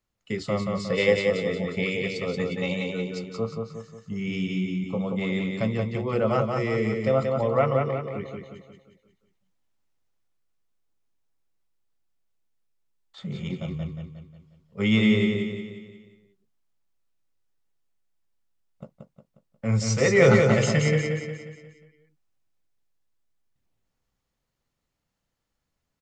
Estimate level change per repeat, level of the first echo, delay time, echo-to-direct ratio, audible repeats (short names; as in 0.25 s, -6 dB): -6.5 dB, -4.0 dB, 0.179 s, -3.0 dB, 5